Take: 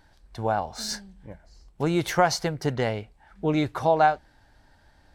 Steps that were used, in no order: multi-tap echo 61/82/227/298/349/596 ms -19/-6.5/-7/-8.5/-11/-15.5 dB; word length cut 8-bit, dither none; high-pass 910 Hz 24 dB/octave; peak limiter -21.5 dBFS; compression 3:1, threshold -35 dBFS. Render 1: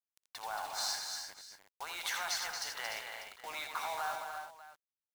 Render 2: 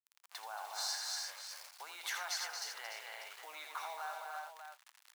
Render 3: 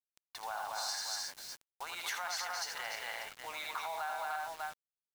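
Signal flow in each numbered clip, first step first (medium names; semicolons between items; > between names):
peak limiter > high-pass > compression > word length cut > multi-tap echo; peak limiter > word length cut > multi-tap echo > compression > high-pass; multi-tap echo > peak limiter > high-pass > word length cut > compression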